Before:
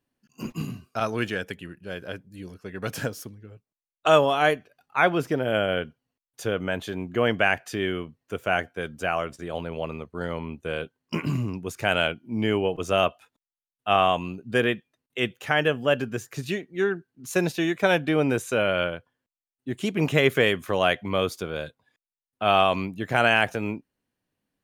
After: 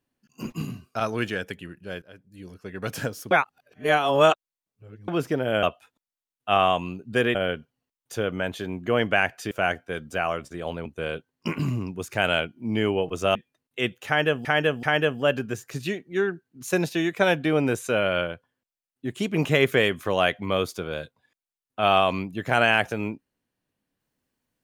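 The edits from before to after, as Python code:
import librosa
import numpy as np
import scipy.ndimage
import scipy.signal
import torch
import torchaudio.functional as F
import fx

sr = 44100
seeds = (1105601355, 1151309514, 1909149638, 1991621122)

y = fx.edit(x, sr, fx.fade_in_from(start_s=2.02, length_s=0.59, floor_db=-23.0),
    fx.reverse_span(start_s=3.31, length_s=1.77),
    fx.cut(start_s=7.79, length_s=0.6),
    fx.cut(start_s=9.74, length_s=0.79),
    fx.move(start_s=13.02, length_s=1.72, to_s=5.63),
    fx.repeat(start_s=15.46, length_s=0.38, count=3), tone=tone)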